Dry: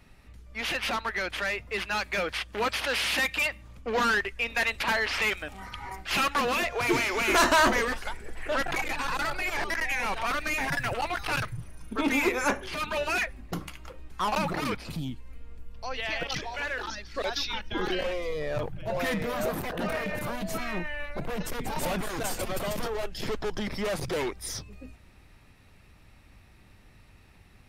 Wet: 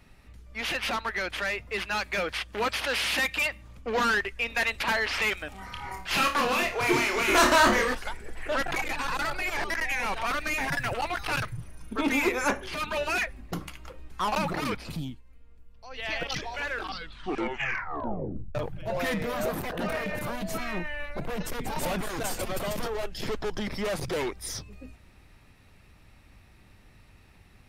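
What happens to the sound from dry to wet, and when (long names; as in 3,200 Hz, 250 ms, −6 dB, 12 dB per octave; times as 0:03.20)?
0:05.66–0:07.95: flutter between parallel walls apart 4.8 metres, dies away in 0.29 s
0:15.01–0:16.10: duck −10.5 dB, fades 0.21 s
0:16.65: tape stop 1.90 s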